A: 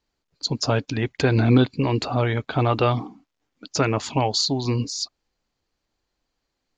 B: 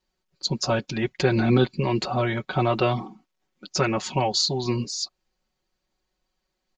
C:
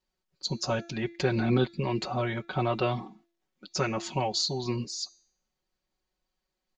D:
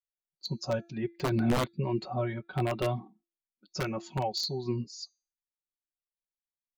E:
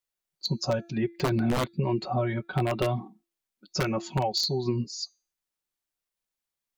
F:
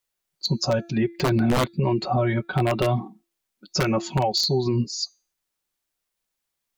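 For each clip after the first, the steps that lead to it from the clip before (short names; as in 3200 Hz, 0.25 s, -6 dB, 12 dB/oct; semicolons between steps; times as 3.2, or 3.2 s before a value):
comb 5.4 ms, depth 96%; gain -3.5 dB
de-hum 340.1 Hz, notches 25; gain -5.5 dB
wrapped overs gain 18 dB; spectral expander 1.5:1
compressor, threshold -30 dBFS, peak gain reduction 8 dB; gain +7.5 dB
limiter -20 dBFS, peak gain reduction 4.5 dB; gain +6.5 dB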